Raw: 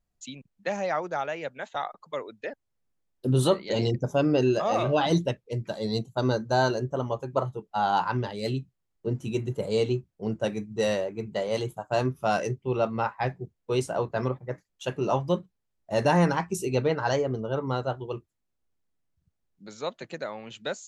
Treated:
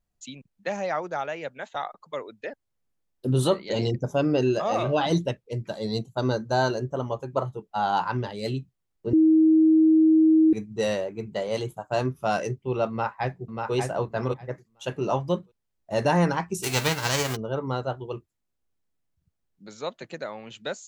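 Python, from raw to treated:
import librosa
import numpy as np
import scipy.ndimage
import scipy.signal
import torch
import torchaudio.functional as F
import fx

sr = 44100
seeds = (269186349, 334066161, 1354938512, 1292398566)

y = fx.echo_throw(x, sr, start_s=12.89, length_s=0.85, ms=590, feedback_pct=15, wet_db=-4.0)
y = fx.envelope_flatten(y, sr, power=0.3, at=(16.62, 17.35), fade=0.02)
y = fx.edit(y, sr, fx.bleep(start_s=9.13, length_s=1.4, hz=317.0, db=-14.0), tone=tone)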